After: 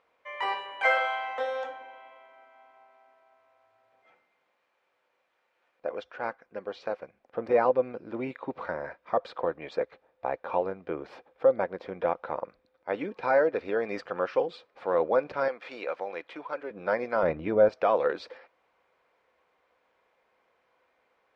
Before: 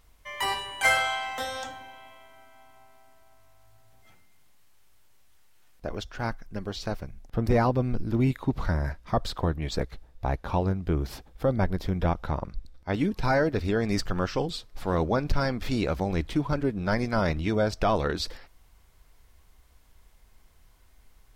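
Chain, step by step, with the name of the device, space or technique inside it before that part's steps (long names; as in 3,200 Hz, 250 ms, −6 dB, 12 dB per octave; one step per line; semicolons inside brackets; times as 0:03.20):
tin-can telephone (band-pass filter 460–2,000 Hz; hollow resonant body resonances 510/2,400 Hz, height 10 dB)
0:15.48–0:16.71: high-pass filter 850 Hz 6 dB per octave
0:17.23–0:17.69: RIAA equalisation playback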